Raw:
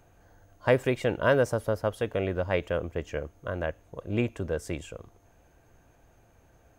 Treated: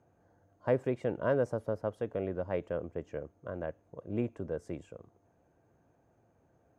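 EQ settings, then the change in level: HPF 120 Hz 12 dB/oct; LPF 5800 Hz 12 dB/oct; bell 3400 Hz -14 dB 2.5 oct; -4.0 dB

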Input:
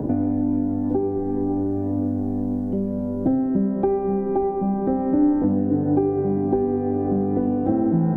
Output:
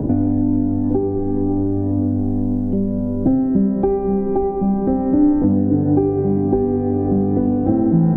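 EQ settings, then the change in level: low shelf 72 Hz +7 dB; low shelf 410 Hz +5.5 dB; 0.0 dB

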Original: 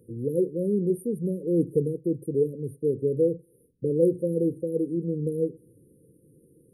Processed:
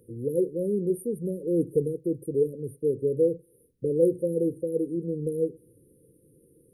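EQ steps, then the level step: bell 180 Hz -7 dB 2.3 oct; +3.0 dB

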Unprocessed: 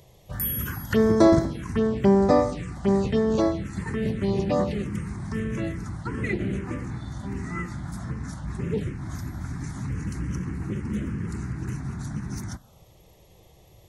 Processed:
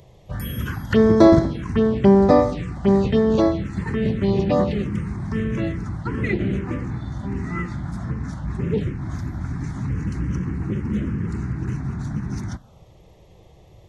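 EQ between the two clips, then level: dynamic EQ 3500 Hz, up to +5 dB, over -50 dBFS, Q 1.3; tape spacing loss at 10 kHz 22 dB; high shelf 6400 Hz +9.5 dB; +5.5 dB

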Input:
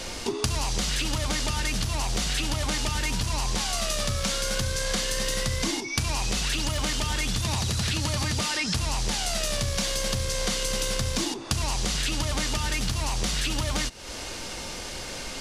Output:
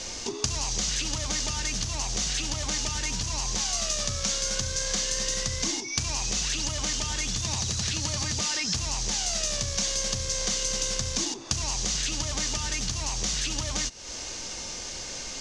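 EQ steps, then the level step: synth low-pass 6400 Hz, resonance Q 3.5; notch 1400 Hz, Q 28; -5.0 dB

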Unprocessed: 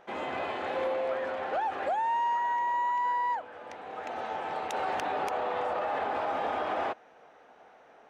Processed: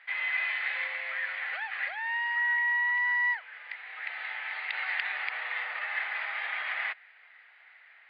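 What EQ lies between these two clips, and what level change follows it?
resonant high-pass 2000 Hz, resonance Q 6.4; brick-wall FIR low-pass 4900 Hz; 0.0 dB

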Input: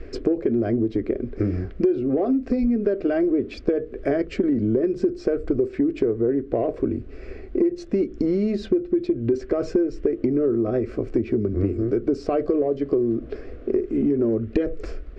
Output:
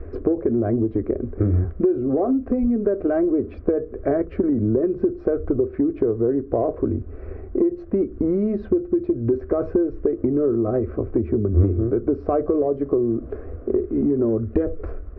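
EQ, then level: synth low-pass 1100 Hz, resonance Q 1.6; bell 80 Hz +14.5 dB 0.48 oct; 0.0 dB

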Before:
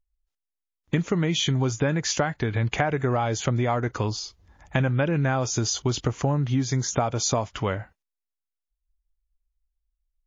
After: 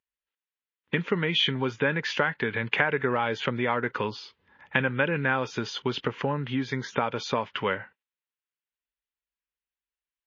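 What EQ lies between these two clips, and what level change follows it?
speaker cabinet 250–3000 Hz, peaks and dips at 320 Hz -9 dB, 730 Hz -7 dB, 1200 Hz -6 dB, 2200 Hz -3 dB; low shelf 490 Hz -6.5 dB; bell 660 Hz -9 dB 0.49 oct; +8.0 dB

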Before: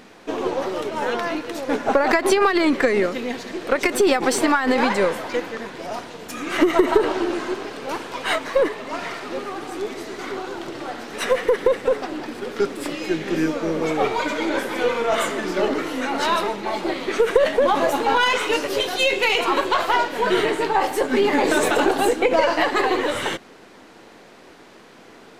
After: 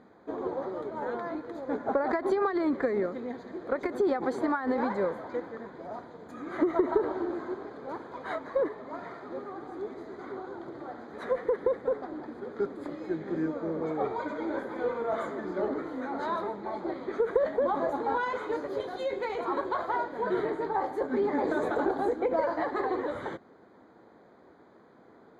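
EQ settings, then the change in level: running mean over 16 samples; HPF 42 Hz; -8.5 dB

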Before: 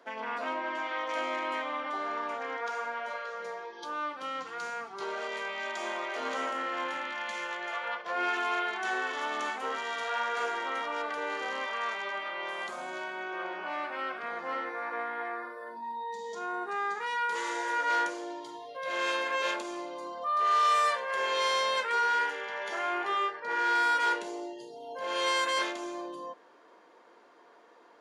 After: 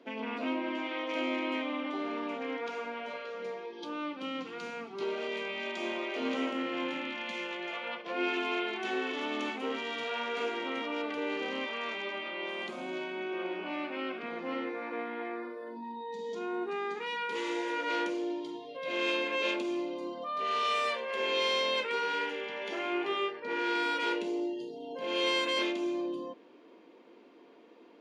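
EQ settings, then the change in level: EQ curve 110 Hz 0 dB, 260 Hz +11 dB, 710 Hz -5 dB, 1200 Hz -8 dB, 1700 Hz -9 dB, 2500 Hz +4 dB, 7900 Hz -11 dB; +1.0 dB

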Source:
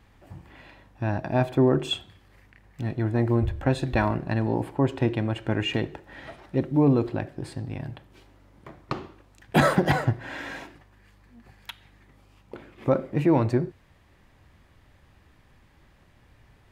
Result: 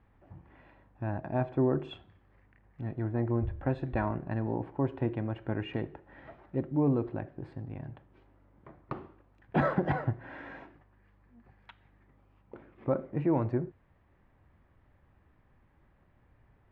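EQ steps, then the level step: LPF 1700 Hz 12 dB/oct; -7.0 dB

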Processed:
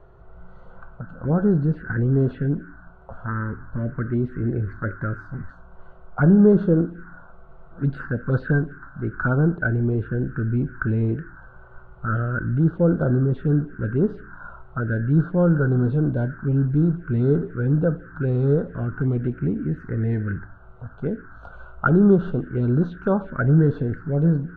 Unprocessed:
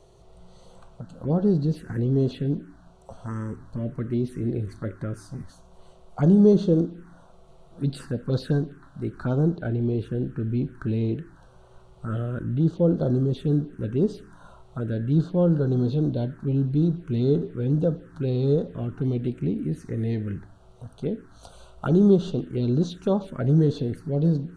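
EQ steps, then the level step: synth low-pass 1500 Hz, resonance Q 7.6; low shelf 110 Hz +9 dB; 0.0 dB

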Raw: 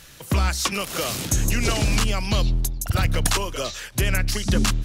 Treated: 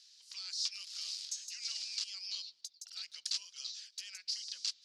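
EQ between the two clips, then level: ladder band-pass 5200 Hz, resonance 65%; air absorption 68 m; 0.0 dB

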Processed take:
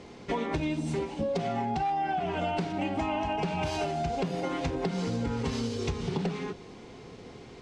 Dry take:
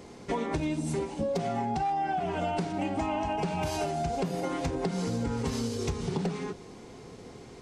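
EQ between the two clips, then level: air absorption 64 m; bell 3000 Hz +4.5 dB 1.3 oct; 0.0 dB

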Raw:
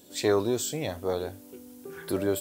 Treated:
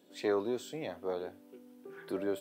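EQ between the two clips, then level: three-band isolator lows -20 dB, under 160 Hz, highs -13 dB, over 3500 Hz; notch 7000 Hz, Q 25; -6.5 dB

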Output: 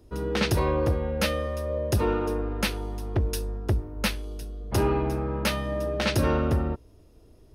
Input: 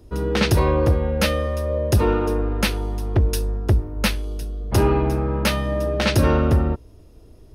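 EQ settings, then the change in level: low shelf 140 Hz -3.5 dB; -5.0 dB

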